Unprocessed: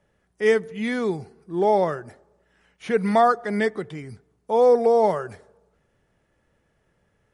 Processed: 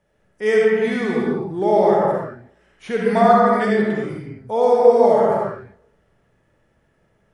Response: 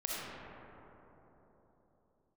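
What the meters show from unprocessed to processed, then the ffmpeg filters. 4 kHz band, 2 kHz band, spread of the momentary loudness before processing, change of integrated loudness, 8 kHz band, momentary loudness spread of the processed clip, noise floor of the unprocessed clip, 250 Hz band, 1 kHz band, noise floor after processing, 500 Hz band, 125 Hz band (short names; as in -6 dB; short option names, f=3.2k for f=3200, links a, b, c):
+3.0 dB, +4.0 dB, 17 LU, +4.5 dB, n/a, 14 LU, -69 dBFS, +6.0 dB, +5.0 dB, -64 dBFS, +5.0 dB, +6.0 dB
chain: -filter_complex "[1:a]atrim=start_sample=2205,afade=t=out:st=0.44:d=0.01,atrim=end_sample=19845[a];[0:a][a]afir=irnorm=-1:irlink=0,volume=1dB"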